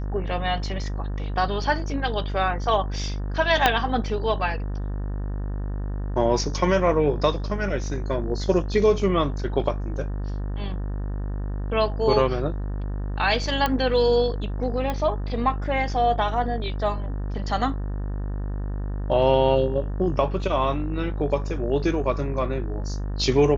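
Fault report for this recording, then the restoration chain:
buzz 50 Hz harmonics 37 -28 dBFS
3.66 pop -3 dBFS
13.66 pop -9 dBFS
14.9 pop -14 dBFS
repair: de-click; de-hum 50 Hz, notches 37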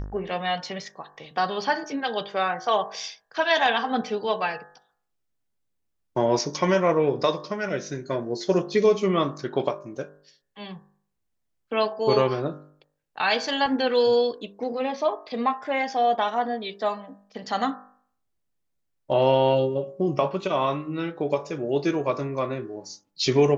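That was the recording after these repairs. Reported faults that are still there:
3.66 pop

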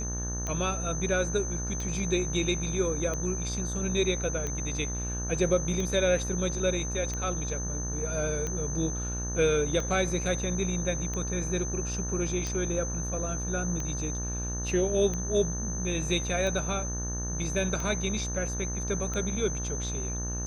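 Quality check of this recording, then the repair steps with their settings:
buzz 60 Hz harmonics 31 -34 dBFS
tick 45 rpm -20 dBFS
tone 6200 Hz -35 dBFS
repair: de-click; notch 6200 Hz, Q 30; de-hum 60 Hz, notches 31

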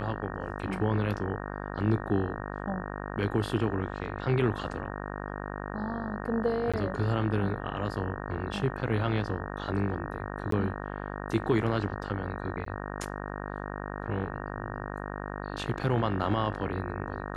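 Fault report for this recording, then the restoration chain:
buzz 50 Hz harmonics 37 -37 dBFS
6.72–6.74 gap 16 ms
10.51–10.52 gap 13 ms
12.65–12.66 gap 13 ms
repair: de-hum 50 Hz, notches 37; interpolate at 6.72, 16 ms; interpolate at 10.51, 13 ms; interpolate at 12.65, 13 ms

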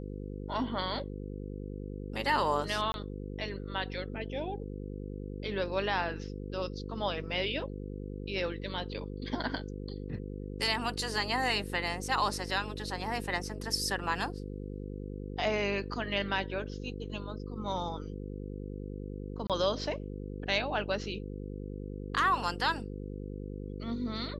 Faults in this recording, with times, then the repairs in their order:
buzz 50 Hz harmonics 10 -40 dBFS
2.92–2.94 gap 21 ms
19.47–19.5 gap 27 ms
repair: de-hum 50 Hz, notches 10; interpolate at 2.92, 21 ms; interpolate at 19.47, 27 ms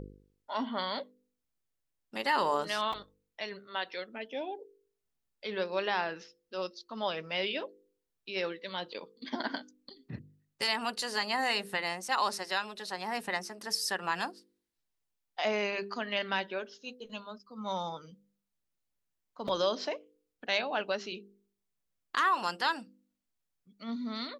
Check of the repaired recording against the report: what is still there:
none

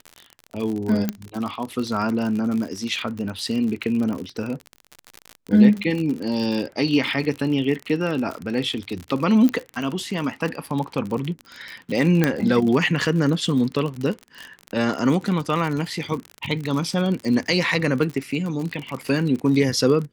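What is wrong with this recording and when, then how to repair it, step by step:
crackle 54/s -26 dBFS
1.09 pop -9 dBFS
9.49 pop -11 dBFS
12.24 pop -5 dBFS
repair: de-click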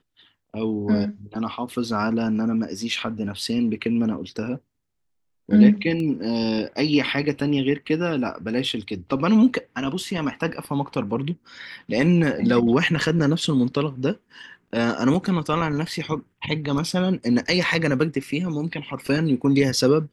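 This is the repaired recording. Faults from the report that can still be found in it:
none

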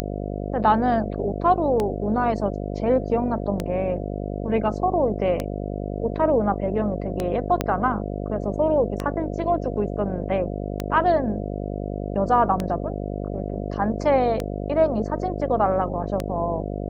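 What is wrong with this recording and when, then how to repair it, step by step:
buzz 50 Hz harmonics 14 -29 dBFS
tick 33 1/3 rpm -11 dBFS
7.61 pop -7 dBFS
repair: de-click; de-hum 50 Hz, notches 14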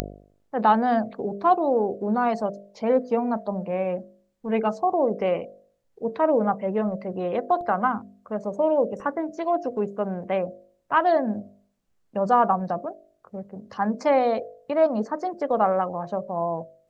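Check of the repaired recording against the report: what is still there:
7.61 pop

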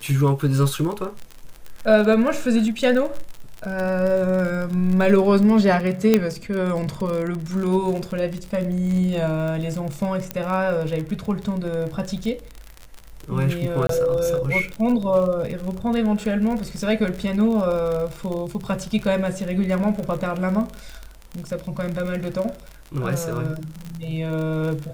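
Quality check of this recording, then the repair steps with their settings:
crackle 45/s -26 dBFS
6.14 pop -3 dBFS
10.31 pop -9 dBFS
13.87–13.89 gap 23 ms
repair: de-click; interpolate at 13.87, 23 ms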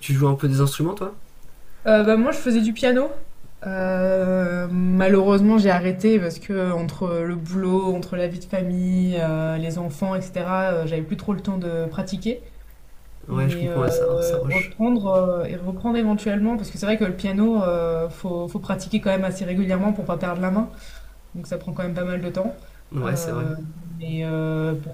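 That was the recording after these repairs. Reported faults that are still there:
6.14 pop

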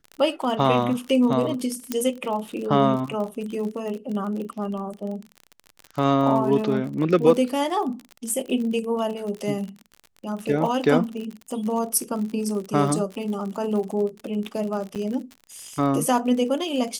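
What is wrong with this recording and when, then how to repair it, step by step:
crackle 43/s -30 dBFS
1.92 pop -10 dBFS
14.95–14.96 gap 7.9 ms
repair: de-click; interpolate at 14.95, 7.9 ms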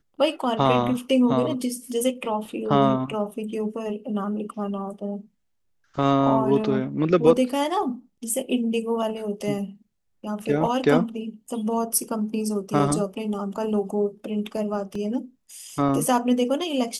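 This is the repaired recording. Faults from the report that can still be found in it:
1.92 pop

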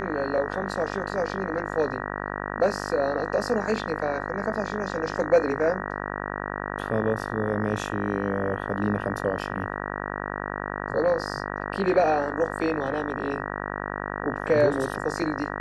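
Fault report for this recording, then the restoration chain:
buzz 50 Hz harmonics 38 -32 dBFS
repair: de-hum 50 Hz, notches 38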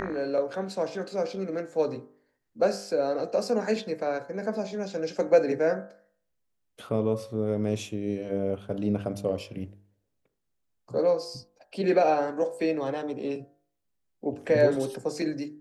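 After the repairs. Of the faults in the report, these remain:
none

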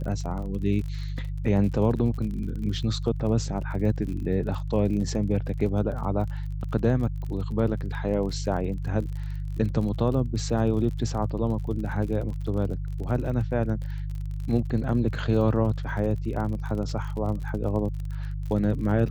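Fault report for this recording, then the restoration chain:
crackle 39/s -34 dBFS
hum 50 Hz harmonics 3 -31 dBFS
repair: de-click; de-hum 50 Hz, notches 3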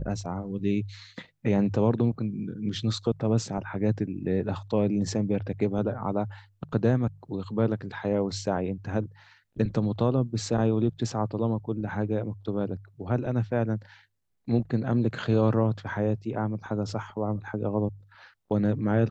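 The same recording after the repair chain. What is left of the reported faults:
none

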